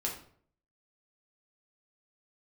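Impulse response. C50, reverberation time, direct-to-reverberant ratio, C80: 7.0 dB, 0.55 s, -2.5 dB, 11.0 dB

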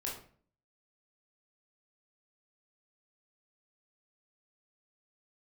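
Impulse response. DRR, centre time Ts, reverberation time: -4.0 dB, 34 ms, 0.50 s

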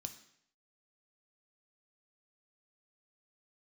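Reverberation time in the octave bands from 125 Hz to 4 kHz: 0.70 s, 0.65 s, 0.70 s, 0.65 s, 0.70 s, 0.65 s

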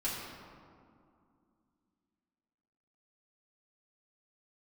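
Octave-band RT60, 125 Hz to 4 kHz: 2.7 s, 3.4 s, 2.4 s, 2.4 s, 1.5 s, 1.1 s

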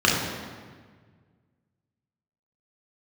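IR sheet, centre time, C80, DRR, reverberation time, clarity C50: 78 ms, 3.5 dB, -4.5 dB, 1.6 s, 1.0 dB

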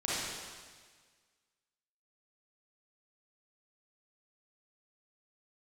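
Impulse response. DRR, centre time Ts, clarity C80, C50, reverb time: -9.0 dB, 131 ms, -1.0 dB, -5.0 dB, 1.6 s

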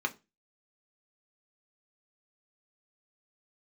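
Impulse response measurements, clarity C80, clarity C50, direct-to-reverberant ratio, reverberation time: 27.5 dB, 20.5 dB, 3.5 dB, 0.25 s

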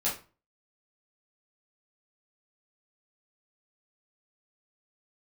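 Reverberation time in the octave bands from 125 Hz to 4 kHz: 0.45 s, 0.40 s, 0.35 s, 0.35 s, 0.30 s, 0.25 s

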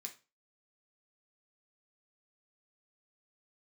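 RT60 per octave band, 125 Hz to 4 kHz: 0.35 s, 0.35 s, 0.30 s, 0.30 s, 0.30 s, 0.30 s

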